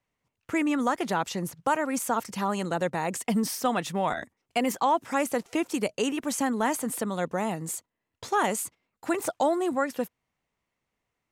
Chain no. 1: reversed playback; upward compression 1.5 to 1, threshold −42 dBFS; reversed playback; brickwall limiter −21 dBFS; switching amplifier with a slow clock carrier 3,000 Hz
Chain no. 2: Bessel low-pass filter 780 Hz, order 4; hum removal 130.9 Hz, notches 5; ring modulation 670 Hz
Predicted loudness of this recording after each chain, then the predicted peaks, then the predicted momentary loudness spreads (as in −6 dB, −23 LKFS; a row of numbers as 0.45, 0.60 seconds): −33.0, −33.5 LKFS; −21.0, −17.5 dBFS; 13, 6 LU